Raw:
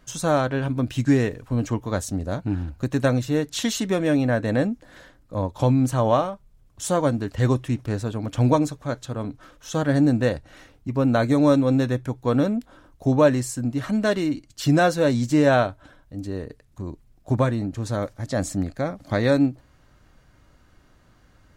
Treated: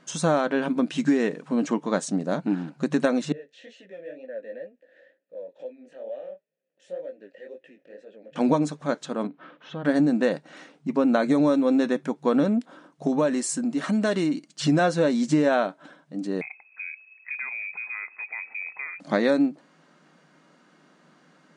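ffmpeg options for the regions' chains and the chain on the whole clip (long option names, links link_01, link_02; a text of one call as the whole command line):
ffmpeg -i in.wav -filter_complex "[0:a]asettb=1/sr,asplit=3[link_01][link_02][link_03];[link_01]atrim=end=3.324[link_04];[link_02]atrim=start=3.32:end=8.36,asetpts=PTS-STARTPTS,afade=type=in:duration=0.004:curve=qsin,afade=type=out:start_time=5.036:duration=0.004:curve=qsin,acompressor=threshold=-28dB:ratio=2.5:attack=3.2:release=140:knee=1:detection=peak,flanger=delay=15:depth=7.9:speed=2.1,asplit=3[link_05][link_06][link_07];[link_05]bandpass=frequency=530:width_type=q:width=8,volume=0dB[link_08];[link_06]bandpass=frequency=1840:width_type=q:width=8,volume=-6dB[link_09];[link_07]bandpass=frequency=2480:width_type=q:width=8,volume=-9dB[link_10];[link_08][link_09][link_10]amix=inputs=3:normalize=0[link_11];[link_03]atrim=start=8.356[link_12];[link_04][link_11]acrossfade=duration=0.004:curve1=hsin:curve2=qsin[link_13];[link_13][link_12]acrossfade=duration=0.004:curve1=qsin:curve2=hsin,asettb=1/sr,asplit=3[link_14][link_15][link_16];[link_14]atrim=end=9.274[link_17];[link_15]atrim=start=9.27:end=9.85,asetpts=PTS-STARTPTS,afade=type=in:duration=0.004:curve=qsin,afade=type=out:start_time=0.576:duration=0.004:curve=qsin,lowpass=frequency=3300:width=0.5412,lowpass=frequency=3300:width=1.3066,acompressor=threshold=-43dB:ratio=2:attack=3.2:release=140:knee=1:detection=peak[link_18];[link_16]atrim=start=9.846[link_19];[link_17][link_18]acrossfade=duration=0.004:curve1=hsin:curve2=qsin[link_20];[link_20][link_19]acrossfade=duration=0.004:curve1=qsin:curve2=hsin,asettb=1/sr,asplit=3[link_21][link_22][link_23];[link_21]atrim=end=13.074[link_24];[link_22]atrim=start=13.07:end=14.48,asetpts=PTS-STARTPTS,afade=type=in:duration=0.004:curve=qsin,afade=type=out:start_time=1.406:duration=0.004:curve=qsin,acompressor=threshold=-24dB:ratio=2:attack=3.2:release=140:knee=1:detection=peak,highshelf=frequency=8400:gain=9.5[link_25];[link_23]atrim=start=14.476[link_26];[link_24][link_25]acrossfade=duration=0.004:curve1=hsin:curve2=qsin[link_27];[link_27][link_26]acrossfade=duration=0.004:curve1=qsin:curve2=hsin,asettb=1/sr,asplit=3[link_28][link_29][link_30];[link_28]atrim=end=16.414[link_31];[link_29]atrim=start=16.41:end=19,asetpts=PTS-STARTPTS,afade=type=in:duration=0.004:curve=qsin,afade=type=out:start_time=2.586:duration=0.004:curve=qsin,acompressor=threshold=-35dB:ratio=4:attack=3.2:release=140:knee=1:detection=peak,lowpass=frequency=2200:width_type=q:width=0.5098,lowpass=frequency=2200:width_type=q:width=0.6013,lowpass=frequency=2200:width_type=q:width=0.9,lowpass=frequency=2200:width_type=q:width=2.563,afreqshift=-2600[link_32];[link_30]atrim=start=18.996[link_33];[link_31][link_32]acrossfade=duration=0.004:curve1=hsin:curve2=qsin[link_34];[link_34][link_33]acrossfade=duration=0.004:curve1=qsin:curve2=hsin,afftfilt=real='re*between(b*sr/4096,150,10000)':imag='im*between(b*sr/4096,150,10000)':win_size=4096:overlap=0.75,highshelf=frequency=5600:gain=-5.5,acompressor=threshold=-20dB:ratio=6,volume=3dB" out.wav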